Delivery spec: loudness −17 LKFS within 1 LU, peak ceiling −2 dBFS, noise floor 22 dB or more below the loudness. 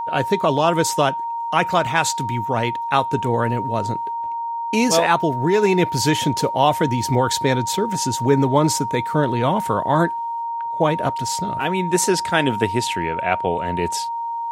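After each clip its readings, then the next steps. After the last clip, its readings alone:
interfering tone 930 Hz; level of the tone −23 dBFS; integrated loudness −20.0 LKFS; sample peak −2.5 dBFS; target loudness −17.0 LKFS
→ notch filter 930 Hz, Q 30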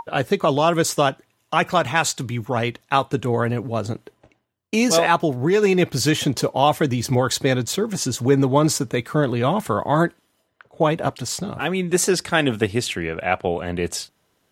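interfering tone none found; integrated loudness −21.0 LKFS; sample peak −3.0 dBFS; target loudness −17.0 LKFS
→ level +4 dB
brickwall limiter −2 dBFS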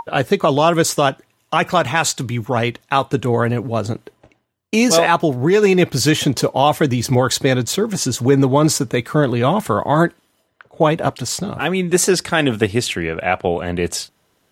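integrated loudness −17.5 LKFS; sample peak −2.0 dBFS; background noise floor −64 dBFS

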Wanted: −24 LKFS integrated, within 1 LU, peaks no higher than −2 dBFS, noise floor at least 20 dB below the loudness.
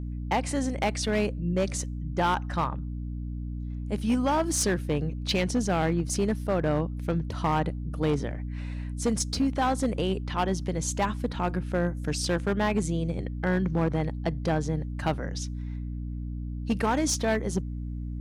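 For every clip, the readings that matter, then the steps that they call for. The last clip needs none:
share of clipped samples 1.5%; peaks flattened at −19.0 dBFS; mains hum 60 Hz; hum harmonics up to 300 Hz; level of the hum −31 dBFS; integrated loudness −28.5 LKFS; sample peak −19.0 dBFS; target loudness −24.0 LKFS
→ clipped peaks rebuilt −19 dBFS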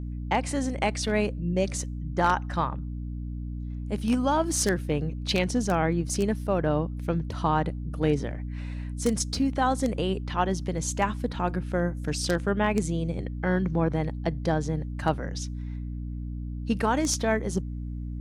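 share of clipped samples 0.0%; mains hum 60 Hz; hum harmonics up to 300 Hz; level of the hum −31 dBFS
→ hum removal 60 Hz, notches 5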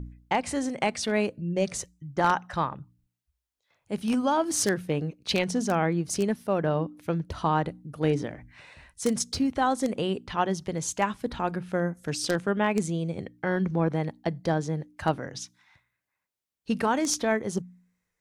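mains hum none found; integrated loudness −28.0 LKFS; sample peak −9.5 dBFS; target loudness −24.0 LKFS
→ level +4 dB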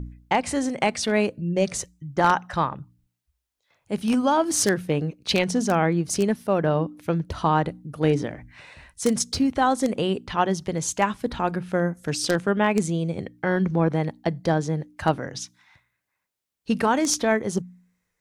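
integrated loudness −24.0 LKFS; sample peak −5.5 dBFS; background noise floor −80 dBFS

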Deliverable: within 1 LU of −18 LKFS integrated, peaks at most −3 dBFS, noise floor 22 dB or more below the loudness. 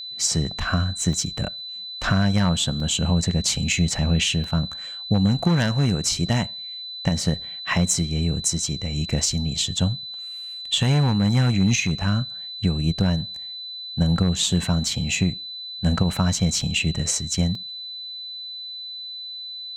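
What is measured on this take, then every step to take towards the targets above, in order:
number of dropouts 5; longest dropout 2.7 ms; interfering tone 4,000 Hz; level of the tone −32 dBFS; integrated loudness −23.0 LKFS; sample peak −8.5 dBFS; target loudness −18.0 LKFS
→ repair the gap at 0:01.13/0:02.80/0:04.44/0:16.61/0:17.55, 2.7 ms
notch filter 4,000 Hz, Q 30
level +5 dB

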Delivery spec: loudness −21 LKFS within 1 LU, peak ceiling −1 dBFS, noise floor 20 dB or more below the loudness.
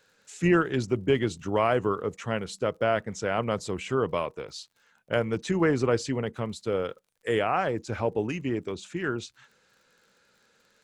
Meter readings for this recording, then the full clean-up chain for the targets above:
crackle rate 46 per second; integrated loudness −28.0 LKFS; sample peak −10.5 dBFS; target loudness −21.0 LKFS
→ click removal
level +7 dB

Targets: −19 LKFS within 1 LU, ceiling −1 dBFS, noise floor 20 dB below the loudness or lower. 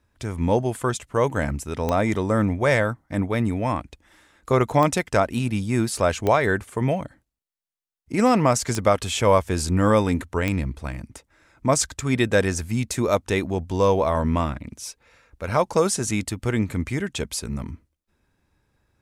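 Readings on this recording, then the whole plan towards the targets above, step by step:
number of clicks 5; integrated loudness −23.0 LKFS; sample peak −6.5 dBFS; target loudness −19.0 LKFS
→ click removal
level +4 dB

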